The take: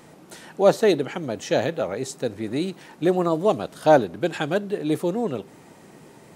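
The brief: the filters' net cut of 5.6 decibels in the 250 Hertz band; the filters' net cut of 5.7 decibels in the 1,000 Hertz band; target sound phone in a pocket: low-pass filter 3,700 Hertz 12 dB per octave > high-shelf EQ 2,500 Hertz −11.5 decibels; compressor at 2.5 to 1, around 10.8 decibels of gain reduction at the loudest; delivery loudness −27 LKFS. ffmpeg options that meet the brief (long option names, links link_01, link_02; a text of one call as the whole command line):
ffmpeg -i in.wav -af "equalizer=frequency=250:width_type=o:gain=-8,equalizer=frequency=1000:width_type=o:gain=-6,acompressor=threshold=-30dB:ratio=2.5,lowpass=3700,highshelf=frequency=2500:gain=-11.5,volume=7.5dB" out.wav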